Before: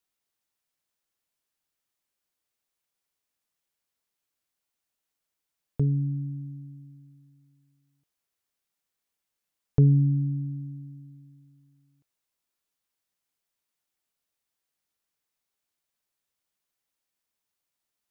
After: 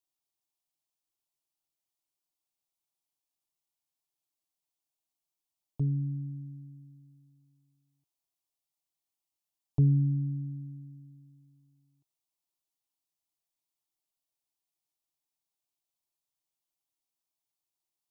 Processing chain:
phaser with its sweep stopped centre 320 Hz, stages 8
level −4.5 dB

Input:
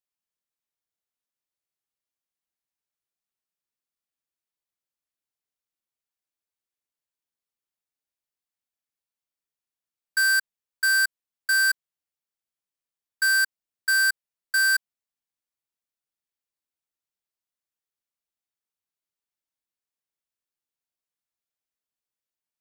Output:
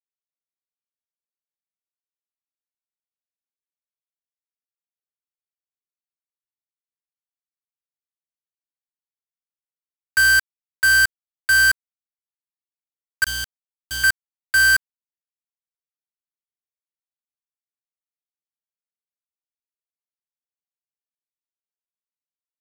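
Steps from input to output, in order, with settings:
0:13.24–0:14.04: downward expander −15 dBFS
parametric band 63 Hz +11 dB 0.46 octaves
bit reduction 5 bits
level +4.5 dB

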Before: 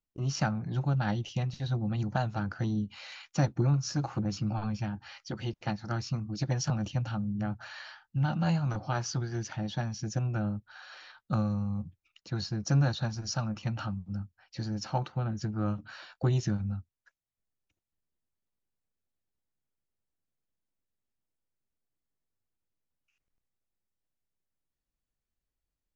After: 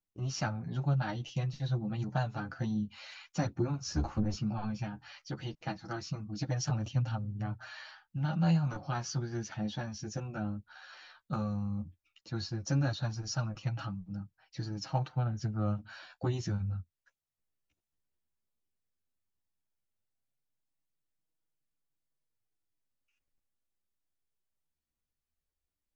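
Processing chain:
0:03.86–0:04.35: sub-octave generator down 1 octave, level 0 dB
multi-voice chorus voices 2, 0.14 Hz, delay 10 ms, depth 3.9 ms

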